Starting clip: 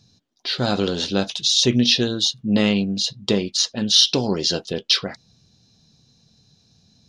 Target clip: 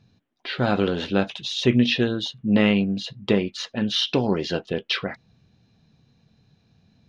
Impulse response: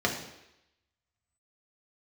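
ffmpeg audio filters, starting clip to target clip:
-af "aeval=exprs='0.841*(cos(1*acos(clip(val(0)/0.841,-1,1)))-cos(1*PI/2))+0.00531*(cos(7*acos(clip(val(0)/0.841,-1,1)))-cos(7*PI/2))':channel_layout=same,highshelf=frequency=3500:width_type=q:width=1.5:gain=-14"

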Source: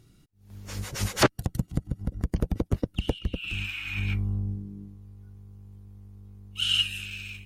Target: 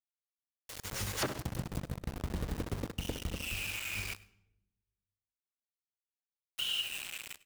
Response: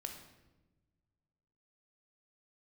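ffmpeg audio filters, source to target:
-filter_complex "[0:a]bandreject=frequency=50:width_type=h:width=6,bandreject=frequency=100:width_type=h:width=6,bandreject=frequency=150:width_type=h:width=6,bandreject=frequency=200:width_type=h:width=6,bandreject=frequency=250:width_type=h:width=6,bandreject=frequency=300:width_type=h:width=6,asplit=2[link_01][link_02];[link_02]asoftclip=type=hard:threshold=-24.5dB,volume=-5dB[link_03];[link_01][link_03]amix=inputs=2:normalize=0,asplit=2[link_04][link_05];[link_05]adelay=63,lowpass=frequency=3700:poles=1,volume=-9dB,asplit=2[link_06][link_07];[link_07]adelay=63,lowpass=frequency=3700:poles=1,volume=0.37,asplit=2[link_08][link_09];[link_09]adelay=63,lowpass=frequency=3700:poles=1,volume=0.37,asplit=2[link_10][link_11];[link_11]adelay=63,lowpass=frequency=3700:poles=1,volume=0.37[link_12];[link_04][link_06][link_08][link_10][link_12]amix=inputs=5:normalize=0,acrusher=bits=4:mix=0:aa=0.000001,acompressor=threshold=-25dB:ratio=2.5,asplit=2[link_13][link_14];[1:a]atrim=start_sample=2205,asetrate=57330,aresample=44100,adelay=100[link_15];[link_14][link_15]afir=irnorm=-1:irlink=0,volume=-15.5dB[link_16];[link_13][link_16]amix=inputs=2:normalize=0,volume=-8.5dB"

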